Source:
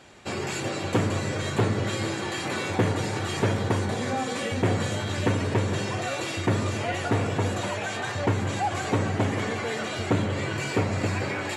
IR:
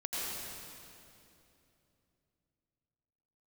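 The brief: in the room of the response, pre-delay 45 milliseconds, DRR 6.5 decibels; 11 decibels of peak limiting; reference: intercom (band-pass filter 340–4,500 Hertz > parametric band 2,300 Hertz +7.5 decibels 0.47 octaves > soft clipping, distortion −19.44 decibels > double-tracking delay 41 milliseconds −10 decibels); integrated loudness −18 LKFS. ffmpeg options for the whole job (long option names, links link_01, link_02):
-filter_complex "[0:a]alimiter=limit=-24dB:level=0:latency=1,asplit=2[link_01][link_02];[1:a]atrim=start_sample=2205,adelay=45[link_03];[link_02][link_03]afir=irnorm=-1:irlink=0,volume=-11dB[link_04];[link_01][link_04]amix=inputs=2:normalize=0,highpass=340,lowpass=4500,equalizer=frequency=2300:width_type=o:width=0.47:gain=7.5,asoftclip=threshold=-25.5dB,asplit=2[link_05][link_06];[link_06]adelay=41,volume=-10dB[link_07];[link_05][link_07]amix=inputs=2:normalize=0,volume=15dB"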